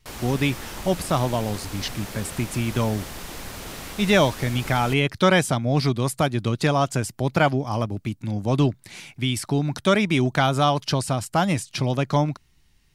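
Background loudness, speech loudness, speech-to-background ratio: −36.0 LKFS, −23.0 LKFS, 13.0 dB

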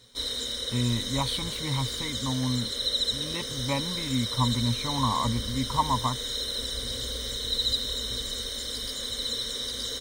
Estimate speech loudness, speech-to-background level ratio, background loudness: −30.0 LKFS, −0.5 dB, −29.5 LKFS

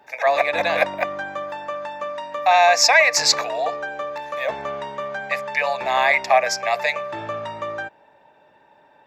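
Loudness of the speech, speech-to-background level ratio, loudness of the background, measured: −19.0 LKFS, 10.5 dB, −29.5 LKFS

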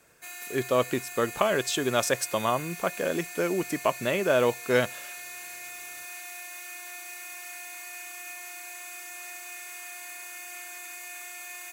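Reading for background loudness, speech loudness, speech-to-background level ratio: −38.5 LKFS, −27.5 LKFS, 11.0 dB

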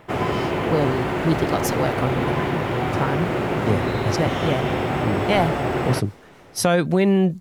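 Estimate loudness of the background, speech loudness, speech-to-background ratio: −23.5 LKFS, −24.0 LKFS, −0.5 dB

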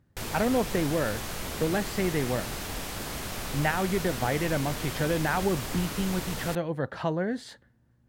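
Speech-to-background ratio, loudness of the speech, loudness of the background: 5.5 dB, −29.5 LKFS, −35.0 LKFS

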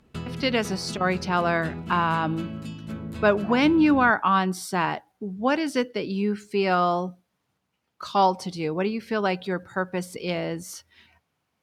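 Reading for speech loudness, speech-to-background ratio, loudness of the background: −24.5 LKFS, 12.0 dB, −36.5 LKFS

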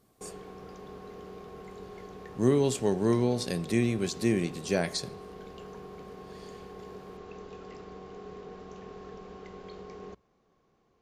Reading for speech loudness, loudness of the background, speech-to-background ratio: −28.5 LKFS, −45.5 LKFS, 17.0 dB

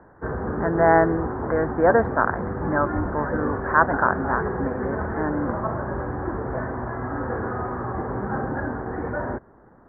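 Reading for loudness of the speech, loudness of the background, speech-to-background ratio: −23.5 LKFS, −28.5 LKFS, 5.0 dB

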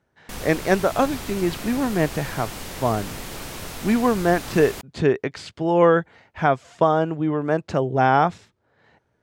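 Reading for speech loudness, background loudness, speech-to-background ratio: −22.0 LKFS, −34.0 LKFS, 12.0 dB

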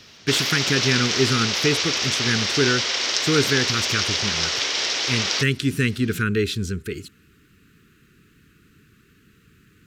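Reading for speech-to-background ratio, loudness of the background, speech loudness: −2.5 dB, −21.5 LKFS, −24.0 LKFS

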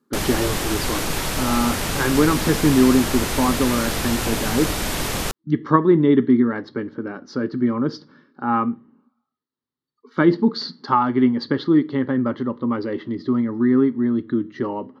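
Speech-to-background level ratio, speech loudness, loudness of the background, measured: 3.0 dB, −21.0 LKFS, −24.0 LKFS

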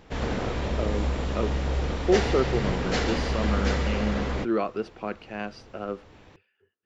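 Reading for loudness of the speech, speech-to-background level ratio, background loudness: −31.0 LKFS, −2.5 dB, −28.5 LKFS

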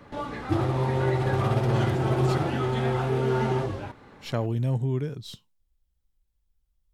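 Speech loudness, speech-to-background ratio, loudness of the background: −30.5 LKFS, −4.5 dB, −26.0 LKFS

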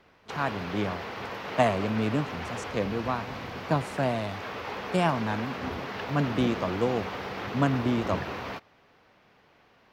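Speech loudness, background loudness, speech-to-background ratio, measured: −29.5 LKFS, −36.0 LKFS, 6.5 dB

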